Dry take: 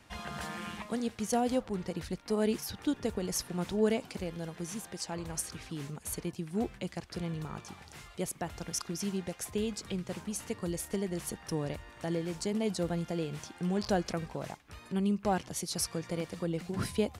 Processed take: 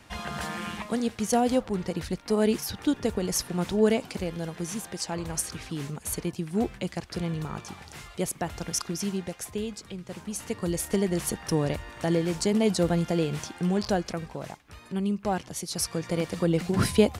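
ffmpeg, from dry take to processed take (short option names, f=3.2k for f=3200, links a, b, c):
-af "volume=25.5dB,afade=t=out:st=8.77:d=1.21:silence=0.354813,afade=t=in:st=9.98:d=1.01:silence=0.266073,afade=t=out:st=13.39:d=0.65:silence=0.473151,afade=t=in:st=15.67:d=0.89:silence=0.398107"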